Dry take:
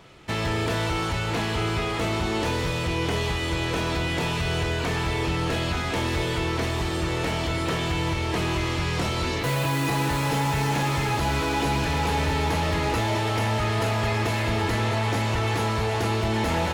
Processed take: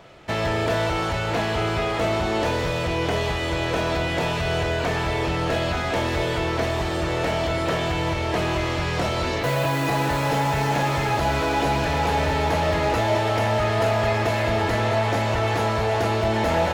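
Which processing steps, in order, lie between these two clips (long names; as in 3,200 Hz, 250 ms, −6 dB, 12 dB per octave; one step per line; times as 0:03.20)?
graphic EQ with 15 bands 630 Hz +9 dB, 1,600 Hz +3 dB, 10,000 Hz −4 dB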